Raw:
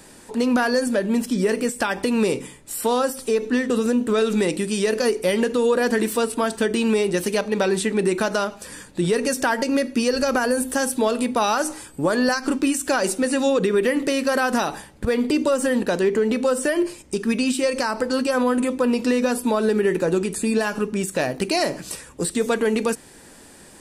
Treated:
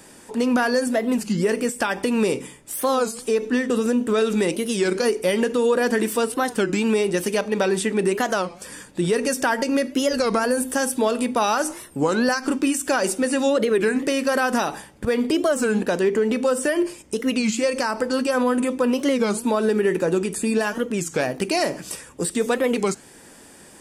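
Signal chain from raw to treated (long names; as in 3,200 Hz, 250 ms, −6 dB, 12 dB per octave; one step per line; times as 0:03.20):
low-shelf EQ 62 Hz −9 dB
notch filter 4,100 Hz, Q 10
wow of a warped record 33 1/3 rpm, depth 250 cents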